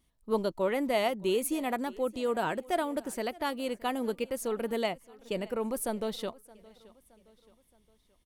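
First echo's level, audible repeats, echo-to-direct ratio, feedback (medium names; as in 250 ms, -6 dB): -22.5 dB, 2, -21.5 dB, 48%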